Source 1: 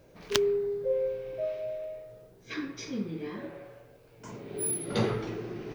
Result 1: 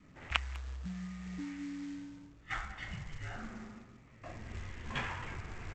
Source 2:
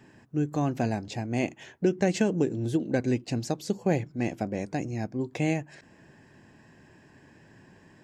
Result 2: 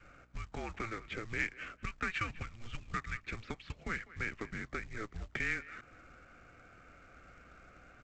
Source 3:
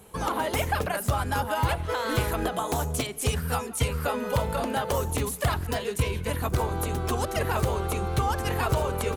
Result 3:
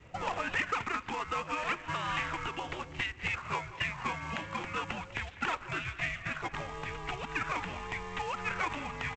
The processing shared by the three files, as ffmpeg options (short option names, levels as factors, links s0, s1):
-filter_complex "[0:a]aemphasis=mode=production:type=75kf,highpass=f=320:t=q:w=0.5412,highpass=f=320:t=q:w=1.307,lowpass=f=3000:t=q:w=0.5176,lowpass=f=3000:t=q:w=0.7071,lowpass=f=3000:t=q:w=1.932,afreqshift=-340,acrossover=split=880|910[s0][s1][s2];[s0]acompressor=threshold=0.0112:ratio=16[s3];[s3][s1][s2]amix=inputs=3:normalize=0,aeval=exprs='val(0)+0.000447*(sin(2*PI*60*n/s)+sin(2*PI*2*60*n/s)/2+sin(2*PI*3*60*n/s)/3+sin(2*PI*4*60*n/s)/4+sin(2*PI*5*60*n/s)/5)':c=same,aresample=16000,acrusher=bits=4:mode=log:mix=0:aa=0.000001,aresample=44100,adynamicequalizer=threshold=0.002:dfrequency=610:dqfactor=2.3:tfrequency=610:tqfactor=2.3:attack=5:release=100:ratio=0.375:range=3:mode=cutabove:tftype=bell,asplit=2[s4][s5];[s5]adelay=200,highpass=300,lowpass=3400,asoftclip=type=hard:threshold=0.0944,volume=0.141[s6];[s4][s6]amix=inputs=2:normalize=0"